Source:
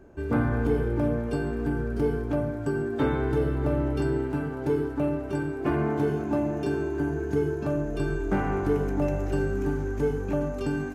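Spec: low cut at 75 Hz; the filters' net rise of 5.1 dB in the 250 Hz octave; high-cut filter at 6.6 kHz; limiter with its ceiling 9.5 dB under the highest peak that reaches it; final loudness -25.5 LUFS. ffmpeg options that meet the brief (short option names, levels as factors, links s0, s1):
-af "highpass=75,lowpass=6600,equalizer=f=250:t=o:g=6.5,volume=1.33,alimiter=limit=0.141:level=0:latency=1"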